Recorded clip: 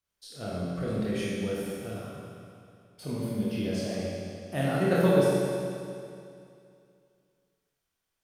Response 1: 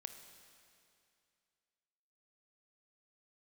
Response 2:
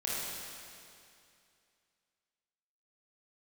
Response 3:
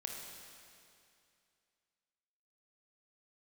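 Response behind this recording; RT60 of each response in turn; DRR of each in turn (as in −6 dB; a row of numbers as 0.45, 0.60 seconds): 2; 2.5, 2.5, 2.5 seconds; 7.0, −7.0, 0.5 decibels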